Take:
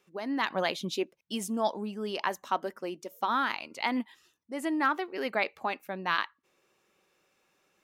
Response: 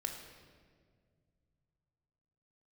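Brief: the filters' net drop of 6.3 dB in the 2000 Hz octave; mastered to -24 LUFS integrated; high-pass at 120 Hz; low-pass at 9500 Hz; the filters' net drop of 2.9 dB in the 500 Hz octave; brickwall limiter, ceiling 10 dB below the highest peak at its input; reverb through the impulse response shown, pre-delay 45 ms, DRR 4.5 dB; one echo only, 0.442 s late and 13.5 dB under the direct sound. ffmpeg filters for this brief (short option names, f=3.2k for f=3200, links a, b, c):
-filter_complex "[0:a]highpass=120,lowpass=9.5k,equalizer=f=500:t=o:g=-3.5,equalizer=f=2k:t=o:g=-8,alimiter=level_in=2.5dB:limit=-24dB:level=0:latency=1,volume=-2.5dB,aecho=1:1:442:0.211,asplit=2[a][b];[1:a]atrim=start_sample=2205,adelay=45[c];[b][c]afir=irnorm=-1:irlink=0,volume=-5dB[d];[a][d]amix=inputs=2:normalize=0,volume=12.5dB"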